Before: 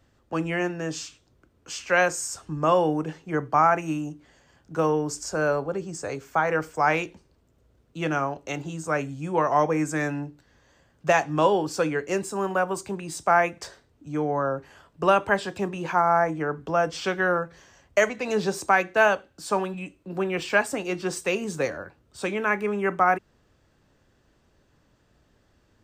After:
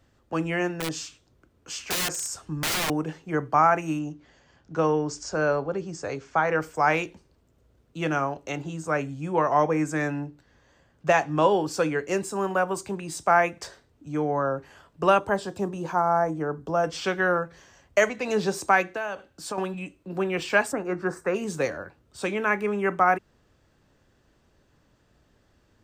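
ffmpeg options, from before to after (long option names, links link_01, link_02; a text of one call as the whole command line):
ffmpeg -i in.wav -filter_complex "[0:a]asettb=1/sr,asplit=3[link_01][link_02][link_03];[link_01]atrim=end=0.744[link_04];[link_02]atrim=start=0.74:end=2.9,asetpts=PTS-STARTPTS,afade=type=in:duration=0.004:curve=qsin,afade=type=out:start_time=2.156:duration=0.004:curve=qsin,aeval=exprs='(mod(11.9*val(0)+1,2)-1)/11.9':channel_layout=same[link_05];[link_03]atrim=start=2.896[link_06];[link_04][link_05]acrossfade=duration=0.004:curve1=hsin:curve2=qsin[link_07];[link_07][link_06]acrossfade=duration=0.004:curve1=qsin:curve2=hsin,asettb=1/sr,asplit=3[link_08][link_09][link_10];[link_08]atrim=end=3.994[link_11];[link_09]atrim=start=3.99:end=6.61,asetpts=PTS-STARTPTS,afade=type=in:duration=0.004:curve=qsin,afade=type=out:start_time=2.616:duration=0.004:curve=qsin,lowpass=frequency=6600:width=0.5412,lowpass=frequency=6600:width=1.3066[link_12];[link_10]atrim=start=6.606[link_13];[link_11][link_12]acrossfade=duration=0.004:curve1=hsin:curve2=qsin[link_14];[link_14][link_13]acrossfade=duration=0.004:curve1=qsin:curve2=hsin,asettb=1/sr,asplit=3[link_15][link_16][link_17];[link_15]atrim=end=8.494[link_18];[link_16]atrim=start=8.49:end=11.51,asetpts=PTS-STARTPTS,afade=type=in:duration=0.004:curve=qsin,afade=type=out:start_time=3.016:duration=0.004:curve=qsin,highshelf=frequency=5100:gain=-5[link_19];[link_17]atrim=start=11.506[link_20];[link_18][link_19]acrossfade=duration=0.004:curve1=hsin:curve2=qsin[link_21];[link_21][link_20]acrossfade=duration=0.004:curve1=qsin:curve2=hsin,asettb=1/sr,asplit=3[link_22][link_23][link_24];[link_22]atrim=end=15.194[link_25];[link_23]atrim=start=15.19:end=16.84,asetpts=PTS-STARTPTS,afade=type=in:duration=0.004:curve=qsin,afade=type=out:start_time=1.646:duration=0.004:curve=qsin,equalizer=frequency=2300:width=1.1:gain=-11[link_26];[link_24]atrim=start=16.836[link_27];[link_25][link_26]acrossfade=duration=0.004:curve1=hsin:curve2=qsin[link_28];[link_28][link_27]acrossfade=duration=0.004:curve1=qsin:curve2=hsin,asettb=1/sr,asplit=3[link_29][link_30][link_31];[link_29]atrim=end=18.884[link_32];[link_30]atrim=start=18.88:end=19.58,asetpts=PTS-STARTPTS,afade=type=in:duration=0.004:curve=qsin,afade=type=out:start_time=0.696:duration=0.004:curve=qsin,acompressor=threshold=-28dB:ratio=5:attack=3.2:release=140:knee=1:detection=peak[link_33];[link_31]atrim=start=19.576[link_34];[link_32][link_33]acrossfade=duration=0.004:curve1=hsin:curve2=qsin[link_35];[link_35][link_34]acrossfade=duration=0.004:curve1=qsin:curve2=hsin,asplit=3[link_36][link_37][link_38];[link_36]afade=type=out:start_time=20.71:duration=0.02[link_39];[link_37]highshelf=frequency=2200:width_type=q:width=3:gain=-13,afade=type=in:start_time=20.71:duration=0.02,afade=type=out:start_time=21.34:duration=0.02[link_40];[link_38]afade=type=in:start_time=21.34:duration=0.02[link_41];[link_39][link_40][link_41]amix=inputs=3:normalize=0" out.wav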